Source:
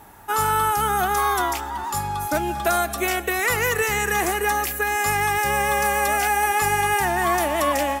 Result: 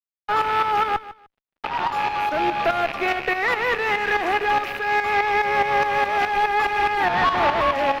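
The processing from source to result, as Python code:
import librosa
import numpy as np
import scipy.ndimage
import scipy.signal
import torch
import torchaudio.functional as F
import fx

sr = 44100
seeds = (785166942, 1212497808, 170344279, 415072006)

p1 = fx.rattle_buzz(x, sr, strikes_db=-36.0, level_db=-20.0)
p2 = scipy.signal.sosfilt(scipy.signal.butter(2, 440.0, 'highpass', fs=sr, output='sos'), p1)
p3 = fx.tube_stage(p2, sr, drive_db=34.0, bias=0.75, at=(0.96, 1.64))
p4 = fx.peak_eq(p3, sr, hz=1200.0, db=14.5, octaves=1.8, at=(7.09, 7.62))
p5 = fx.fuzz(p4, sr, gain_db=33.0, gate_db=-31.0)
p6 = fx.tremolo_shape(p5, sr, shape='saw_up', hz=4.8, depth_pct=65)
p7 = fx.dmg_tone(p6, sr, hz=2200.0, level_db=-32.0, at=(4.89, 5.73), fade=0.02)
p8 = fx.air_absorb(p7, sr, metres=320.0)
y = p8 + fx.echo_feedback(p8, sr, ms=150, feedback_pct=22, wet_db=-15.5, dry=0)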